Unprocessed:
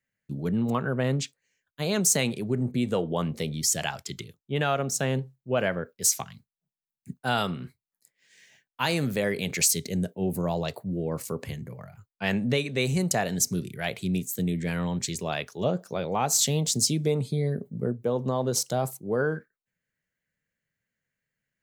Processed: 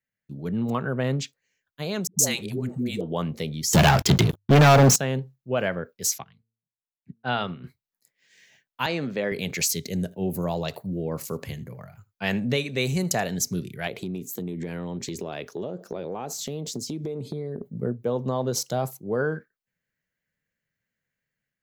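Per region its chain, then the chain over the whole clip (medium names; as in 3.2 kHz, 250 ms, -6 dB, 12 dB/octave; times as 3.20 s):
2.07–3.01 s: treble shelf 3.4 kHz +9.5 dB + phase dispersion highs, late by 118 ms, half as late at 440 Hz
3.73–4.96 s: bass shelf 380 Hz +8 dB + hum notches 50/100 Hz + waveshaping leveller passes 5
6.18–7.64 s: low-pass 3.8 kHz 24 dB/octave + de-hum 113.5 Hz, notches 4 + upward expansion, over -48 dBFS
8.86–9.32 s: high-pass 190 Hz + distance through air 130 m
9.83–13.27 s: treble shelf 5 kHz +4.5 dB + delay 79 ms -22 dB
13.87–17.63 s: peaking EQ 360 Hz +11 dB 1.5 oct + compression 12:1, threshold -28 dBFS
whole clip: peaking EQ 8.9 kHz -9 dB 0.39 oct; level rider gain up to 5.5 dB; trim -5 dB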